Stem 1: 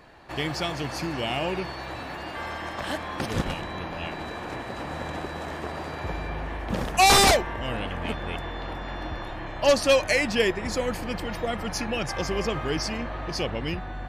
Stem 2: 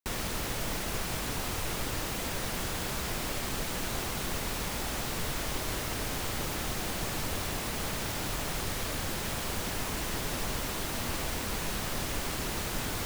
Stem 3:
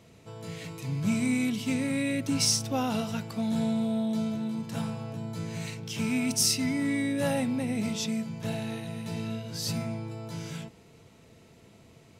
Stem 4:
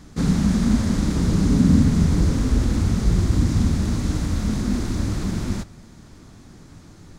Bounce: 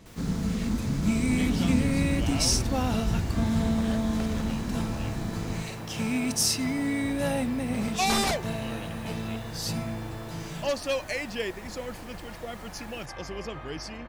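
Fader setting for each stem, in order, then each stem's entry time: -9.0 dB, -17.0 dB, 0.0 dB, -10.0 dB; 1.00 s, 0.00 s, 0.00 s, 0.00 s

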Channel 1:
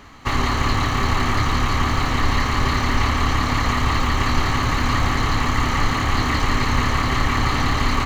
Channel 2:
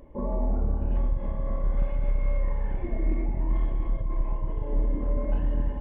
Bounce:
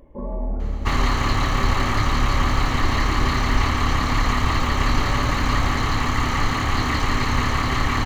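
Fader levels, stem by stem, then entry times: -1.5 dB, 0.0 dB; 0.60 s, 0.00 s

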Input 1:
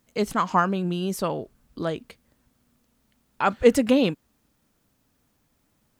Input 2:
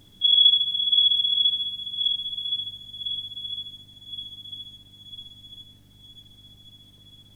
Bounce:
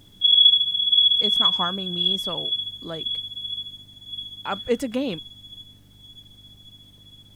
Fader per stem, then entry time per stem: -6.5 dB, +2.0 dB; 1.05 s, 0.00 s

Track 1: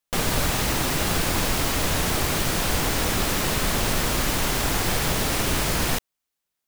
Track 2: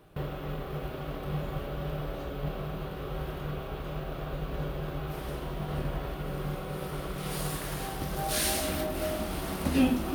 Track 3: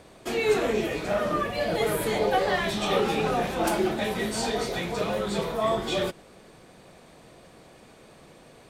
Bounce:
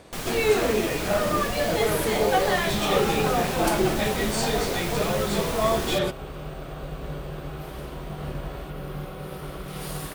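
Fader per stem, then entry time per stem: -9.0 dB, 0.0 dB, +2.0 dB; 0.00 s, 2.50 s, 0.00 s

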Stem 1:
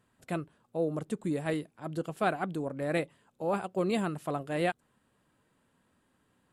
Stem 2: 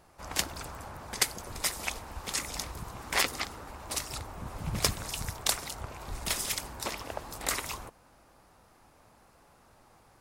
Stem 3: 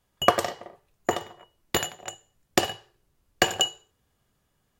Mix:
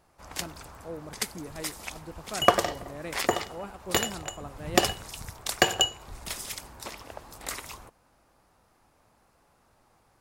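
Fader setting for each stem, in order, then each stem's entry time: -9.0 dB, -4.5 dB, 0.0 dB; 0.10 s, 0.00 s, 2.20 s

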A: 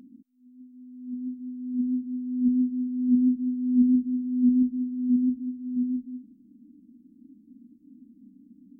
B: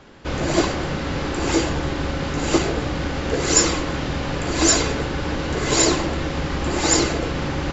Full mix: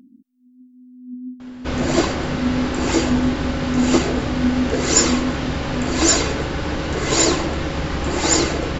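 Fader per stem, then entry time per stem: +1.0 dB, +1.0 dB; 0.00 s, 1.40 s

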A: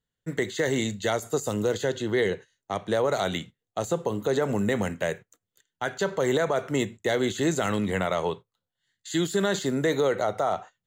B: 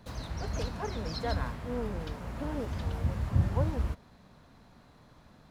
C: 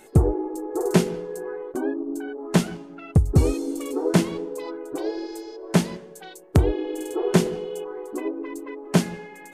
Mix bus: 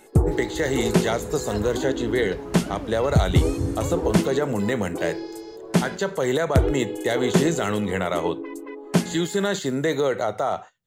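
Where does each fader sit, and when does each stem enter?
+1.5 dB, -1.5 dB, -1.0 dB; 0.00 s, 0.25 s, 0.00 s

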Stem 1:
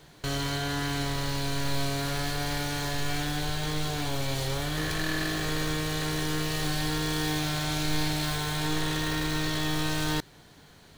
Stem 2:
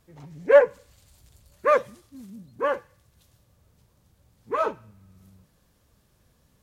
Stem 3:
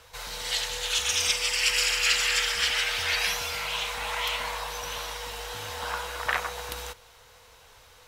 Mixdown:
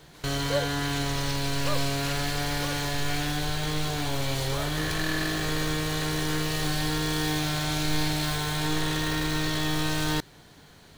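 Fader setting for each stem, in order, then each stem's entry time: +1.5 dB, -14.5 dB, -15.5 dB; 0.00 s, 0.00 s, 0.00 s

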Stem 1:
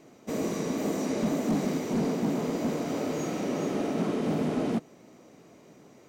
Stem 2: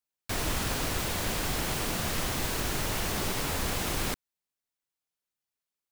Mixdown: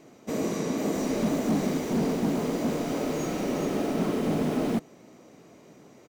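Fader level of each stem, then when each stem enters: +1.5 dB, -15.5 dB; 0.00 s, 0.65 s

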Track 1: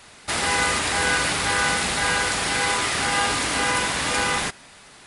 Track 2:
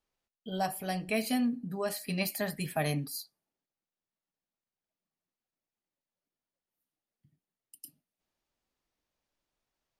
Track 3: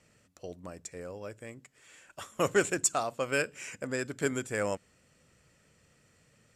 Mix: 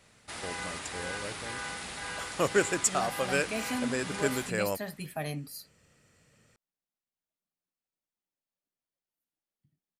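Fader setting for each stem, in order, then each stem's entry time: -16.5 dB, -4.5 dB, +0.5 dB; 0.00 s, 2.40 s, 0.00 s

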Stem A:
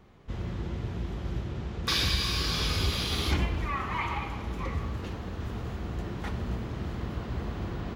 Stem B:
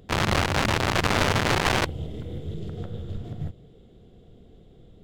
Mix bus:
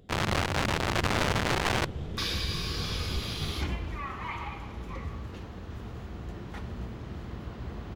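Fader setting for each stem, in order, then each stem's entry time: -5.0 dB, -5.0 dB; 0.30 s, 0.00 s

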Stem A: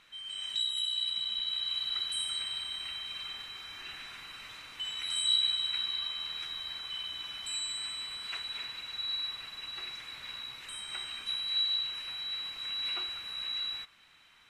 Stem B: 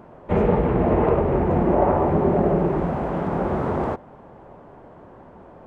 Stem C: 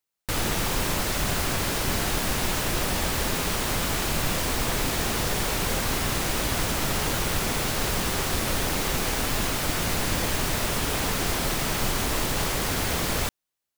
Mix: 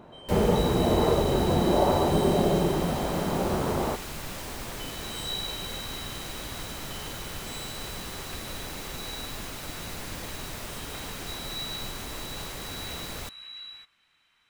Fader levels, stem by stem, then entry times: -7.0 dB, -4.0 dB, -11.5 dB; 0.00 s, 0.00 s, 0.00 s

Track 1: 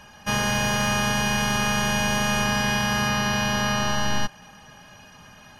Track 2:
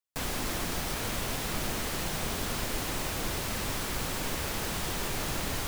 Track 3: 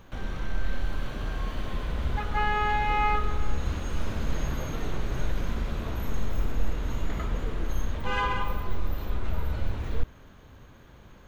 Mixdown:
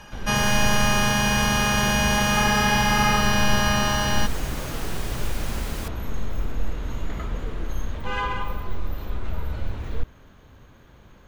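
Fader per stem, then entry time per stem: +1.5 dB, -3.0 dB, +0.5 dB; 0.00 s, 0.20 s, 0.00 s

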